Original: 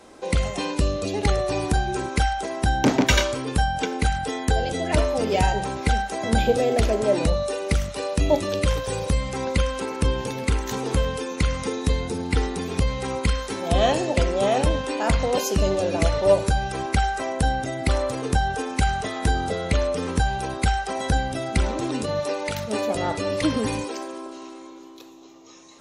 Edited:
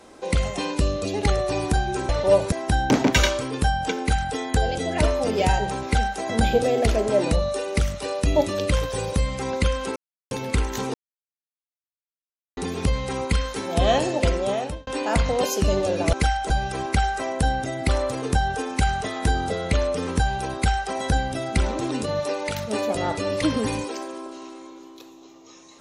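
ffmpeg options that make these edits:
-filter_complex "[0:a]asplit=10[a][b][c][d][e][f][g][h][i][j];[a]atrim=end=2.092[k];[b]atrim=start=16.068:end=16.502[l];[c]atrim=start=2.458:end=9.9,asetpts=PTS-STARTPTS,afade=t=out:st=7.438:d=0.004:c=hsin[m];[d]atrim=start=9.9:end=10.25,asetpts=PTS-STARTPTS,volume=0[n];[e]atrim=start=10.25:end=10.88,asetpts=PTS-STARTPTS,afade=t=in:d=0.004:c=hsin,afade=t=out:st=0.626:d=0.004:c=hsin[o];[f]atrim=start=10.88:end=12.51,asetpts=PTS-STARTPTS,volume=0[p];[g]atrim=start=12.51:end=14.81,asetpts=PTS-STARTPTS,afade=t=in:d=0.004:c=hsin,afade=t=out:st=1.76:d=0.54[q];[h]atrim=start=14.81:end=16.072,asetpts=PTS-STARTPTS,afade=t=in:d=0.004:c=hsin[r];[i]atrim=start=2.088:end=2.462[s];[j]atrim=start=16.498[t];[k][l]acrossfade=d=0.004:c1=hsin:c2=hsin[u];[m][n][o][p][q][r]concat=n=6:v=0:a=1[v];[u][v]acrossfade=d=0.004:c1=hsin:c2=hsin[w];[w][s]acrossfade=d=0.004:c1=hsin:c2=hsin[x];[x][t]acrossfade=d=0.004:c1=hsin:c2=hsin"

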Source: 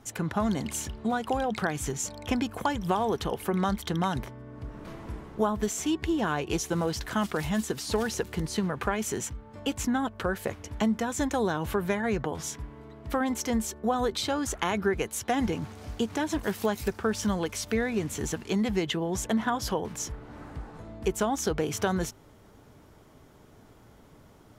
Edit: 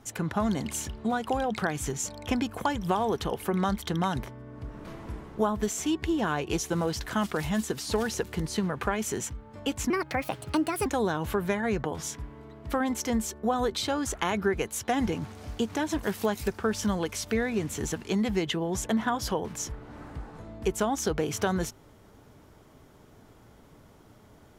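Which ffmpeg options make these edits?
-filter_complex "[0:a]asplit=3[a][b][c];[a]atrim=end=9.904[d];[b]atrim=start=9.9:end=11.26,asetpts=PTS-STARTPTS,asetrate=62622,aresample=44100[e];[c]atrim=start=11.256[f];[d][e]acrossfade=d=0.004:c1=hsin:c2=hsin[g];[g][f]acrossfade=d=0.004:c1=hsin:c2=hsin"

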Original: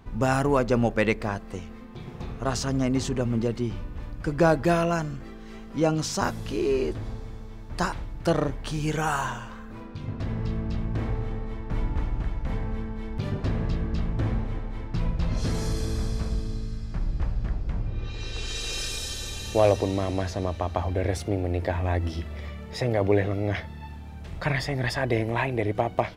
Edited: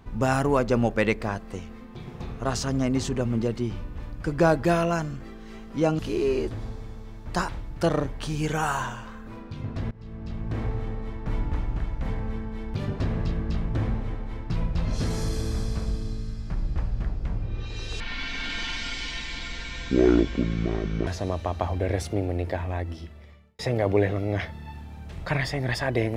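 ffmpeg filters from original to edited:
-filter_complex "[0:a]asplit=6[a][b][c][d][e][f];[a]atrim=end=5.992[g];[b]atrim=start=6.428:end=10.35,asetpts=PTS-STARTPTS,afade=t=out:st=3.918:d=0.004:c=hsin:silence=0.0668344[h];[c]atrim=start=10.35:end=18.444,asetpts=PTS-STARTPTS,afade=t=in:d=0.74:silence=0.0668344[i];[d]atrim=start=18.44:end=20.22,asetpts=PTS-STARTPTS,asetrate=25578,aresample=44100,atrim=end_sample=135341,asetpts=PTS-STARTPTS[j];[e]atrim=start=20.216:end=22.74,asetpts=PTS-STARTPTS,afade=t=out:st=1.184:d=1.34[k];[f]atrim=start=22.74,asetpts=PTS-STARTPTS,afade=t=in:d=0.004:c=hsin[l];[h][i]concat=n=2:v=0:a=1[m];[g][m]acrossfade=d=0.004:c1=hsin:c2=hsin[n];[n][j]acrossfade=d=0.004:c1=hsin:c2=hsin[o];[k][l]concat=n=2:v=0:a=1[p];[o][p]acrossfade=d=0.004:c1=hsin:c2=hsin"

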